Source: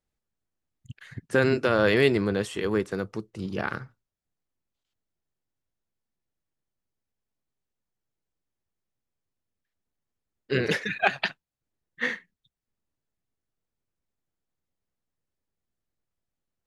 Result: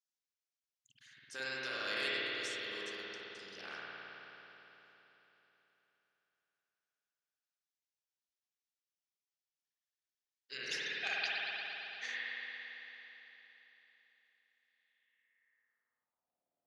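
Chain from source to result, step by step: spring tank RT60 3.8 s, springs 53 ms, chirp 70 ms, DRR -8 dB; band-pass sweep 5.6 kHz -> 650 Hz, 14.60–16.44 s; trim -1 dB

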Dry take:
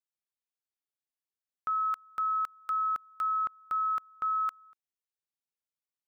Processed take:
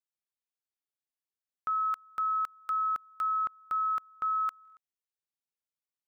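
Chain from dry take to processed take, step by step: buffer glitch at 4.63 s, samples 1024, times 5

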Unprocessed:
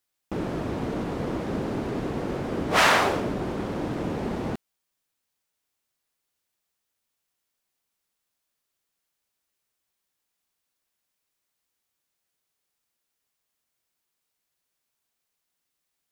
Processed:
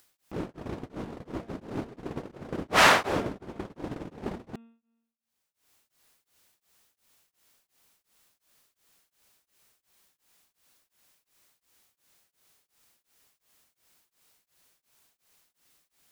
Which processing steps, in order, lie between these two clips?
gate -26 dBFS, range -41 dB; de-hum 229.6 Hz, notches 16; upward compressor, threshold -26 dBFS; tremolo of two beating tones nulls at 2.8 Hz; trim +1.5 dB

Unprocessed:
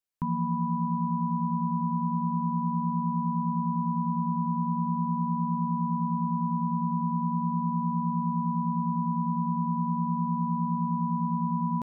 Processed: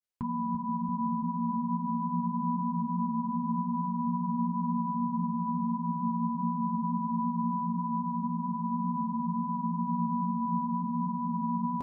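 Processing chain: granulator 100 ms, grains 20 per s, spray 17 ms, pitch spread up and down by 0 st; comb of notches 160 Hz; on a send: filtered feedback delay 340 ms, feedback 54%, low-pass 850 Hz, level -8 dB

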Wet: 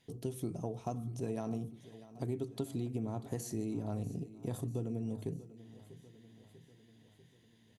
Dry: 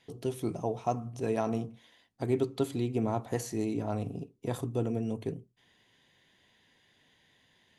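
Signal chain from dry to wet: FFT filter 180 Hz 0 dB, 960 Hz -9 dB, 2.2 kHz -9 dB, 11 kHz 0 dB; compression, threshold -34 dBFS, peak gain reduction 9 dB; on a send: feedback delay 643 ms, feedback 59%, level -17 dB; on the sum: trim +1 dB

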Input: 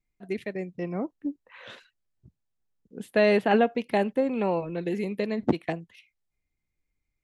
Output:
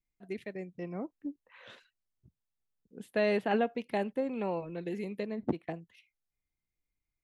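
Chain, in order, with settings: 5.23–5.74 s: treble shelf 2.3 kHz -10 dB; trim -7.5 dB

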